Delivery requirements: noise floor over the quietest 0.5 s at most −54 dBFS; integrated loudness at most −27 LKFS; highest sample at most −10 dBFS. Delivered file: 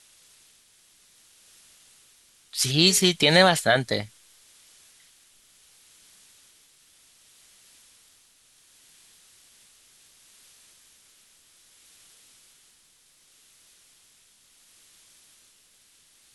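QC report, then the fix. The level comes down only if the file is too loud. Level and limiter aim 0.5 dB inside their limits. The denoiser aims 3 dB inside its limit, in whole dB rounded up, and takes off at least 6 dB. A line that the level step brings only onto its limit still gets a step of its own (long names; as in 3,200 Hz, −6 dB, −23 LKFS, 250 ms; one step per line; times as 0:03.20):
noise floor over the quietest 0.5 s −60 dBFS: in spec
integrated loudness −20.0 LKFS: out of spec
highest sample −5.0 dBFS: out of spec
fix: level −7.5 dB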